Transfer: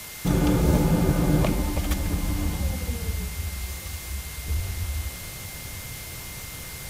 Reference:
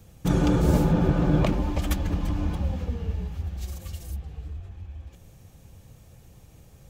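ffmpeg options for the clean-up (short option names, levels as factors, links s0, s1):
-af "bandreject=f=2100:w=30,afwtdn=0.013,asetnsamples=n=441:p=0,asendcmd='4.48 volume volume -9.5dB',volume=1"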